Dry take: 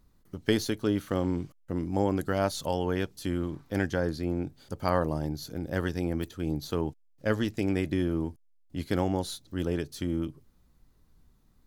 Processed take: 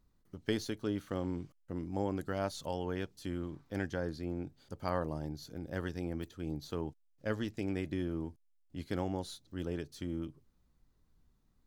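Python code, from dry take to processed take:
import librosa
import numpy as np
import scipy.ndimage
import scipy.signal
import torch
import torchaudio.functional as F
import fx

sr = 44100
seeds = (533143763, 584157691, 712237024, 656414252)

y = fx.peak_eq(x, sr, hz=12000.0, db=-5.5, octaves=0.59)
y = y * librosa.db_to_amplitude(-8.0)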